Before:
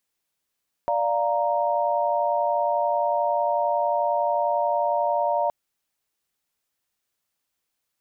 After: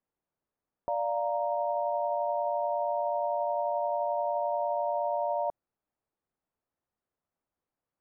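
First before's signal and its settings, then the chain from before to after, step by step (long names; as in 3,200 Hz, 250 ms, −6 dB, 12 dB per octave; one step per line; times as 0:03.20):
held notes D5/F5/A#5 sine, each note −24.5 dBFS 4.62 s
low-pass filter 1,000 Hz 12 dB per octave
brickwall limiter −22.5 dBFS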